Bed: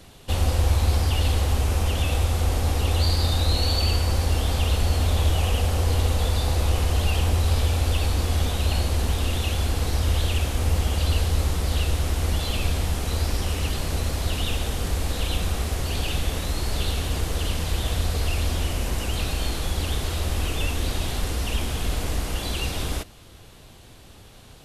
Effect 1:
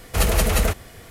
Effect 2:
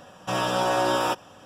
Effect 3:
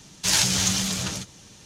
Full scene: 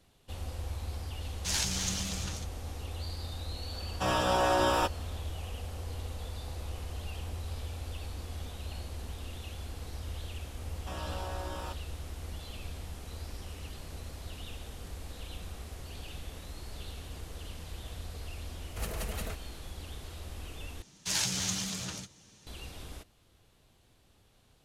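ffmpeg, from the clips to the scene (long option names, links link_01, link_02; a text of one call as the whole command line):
ffmpeg -i bed.wav -i cue0.wav -i cue1.wav -i cue2.wav -filter_complex "[3:a]asplit=2[link_01][link_02];[2:a]asplit=2[link_03][link_04];[0:a]volume=-17.5dB[link_05];[link_04]alimiter=limit=-17.5dB:level=0:latency=1:release=71[link_06];[link_05]asplit=2[link_07][link_08];[link_07]atrim=end=20.824[link_09];[link_02]atrim=end=1.65,asetpts=PTS-STARTPTS,volume=-10dB[link_10];[link_08]atrim=start=22.466[link_11];[link_01]atrim=end=1.65,asetpts=PTS-STARTPTS,volume=-11dB,afade=type=in:duration=0.004:curve=hsin,afade=type=out:start_time=1.646:duration=0.004:curve=hsin,adelay=1210[link_12];[link_03]atrim=end=1.45,asetpts=PTS-STARTPTS,volume=-3.5dB,afade=type=in:duration=0.004:curve=hsin,afade=type=out:start_time=1.446:duration=0.004:curve=hsin,adelay=164493S[link_13];[link_06]atrim=end=1.45,asetpts=PTS-STARTPTS,volume=-15dB,afade=type=in:duration=0.004:curve=hsin,afade=type=out:start_time=1.446:duration=0.004:curve=hsin,adelay=10590[link_14];[1:a]atrim=end=1.1,asetpts=PTS-STARTPTS,volume=-18dB,afade=type=in:duration=0.004:curve=hsin,afade=type=out:start_time=1.096:duration=0.004:curve=hsin,adelay=18620[link_15];[link_09][link_10]acrossfade=duration=0.004:curve1=hsin:curve2=hsin[link_16];[link_16][link_11]acrossfade=duration=0.004:curve1=hsin:curve2=hsin[link_17];[link_17][link_12][link_13][link_14][link_15]amix=inputs=5:normalize=0" out.wav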